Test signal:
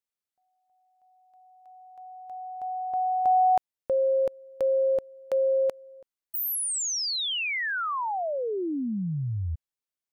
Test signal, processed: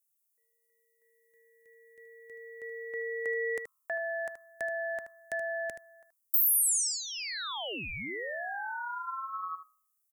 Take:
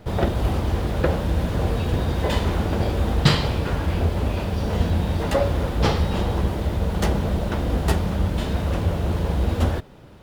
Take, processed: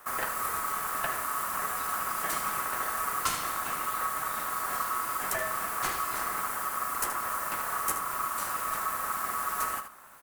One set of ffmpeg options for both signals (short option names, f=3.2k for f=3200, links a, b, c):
-filter_complex "[0:a]bandreject=f=60.94:t=h:w=4,bandreject=f=121.88:t=h:w=4,bandreject=f=182.82:t=h:w=4,aexciter=amount=13.8:drive=3.6:freq=7k,aeval=exprs='val(0)*sin(2*PI*1200*n/s)':c=same,acrossover=split=310|1800[a][b][c];[a]acompressor=threshold=-47dB:ratio=1.5[d];[b]acompressor=threshold=-29dB:ratio=2.5[e];[c]acompressor=threshold=-28dB:ratio=2[f];[d][e][f]amix=inputs=3:normalize=0,asplit=2[g][h];[h]aecho=0:1:77:0.316[i];[g][i]amix=inputs=2:normalize=0,volume=-5dB"